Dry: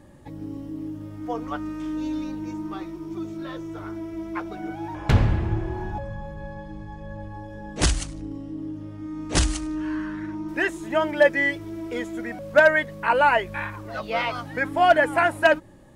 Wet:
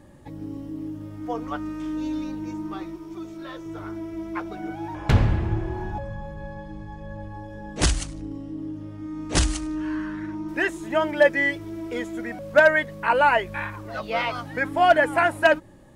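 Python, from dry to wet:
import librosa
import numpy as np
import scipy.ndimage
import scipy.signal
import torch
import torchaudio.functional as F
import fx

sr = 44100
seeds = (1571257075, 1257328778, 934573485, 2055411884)

y = fx.peak_eq(x, sr, hz=130.0, db=-7.5, octaves=2.7, at=(2.96, 3.66))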